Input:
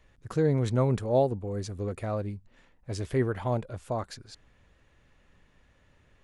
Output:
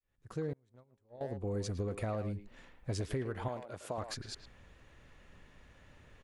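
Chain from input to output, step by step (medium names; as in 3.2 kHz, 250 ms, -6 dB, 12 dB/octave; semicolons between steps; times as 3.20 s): fade-in on the opening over 1.58 s; compression 16:1, threshold -36 dBFS, peak gain reduction 16.5 dB; 3.48–3.98 s: high-pass 390 Hz 6 dB/octave; speakerphone echo 110 ms, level -8 dB; 0.53–1.21 s: gate -34 dBFS, range -34 dB; trim +3.5 dB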